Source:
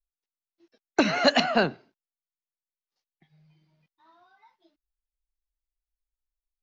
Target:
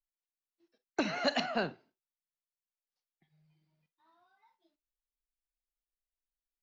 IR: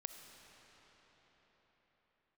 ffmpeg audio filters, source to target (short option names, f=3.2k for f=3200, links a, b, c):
-filter_complex "[1:a]atrim=start_sample=2205,atrim=end_sample=3969,asetrate=61740,aresample=44100[a];[0:a][a]afir=irnorm=-1:irlink=0,volume=-2.5dB"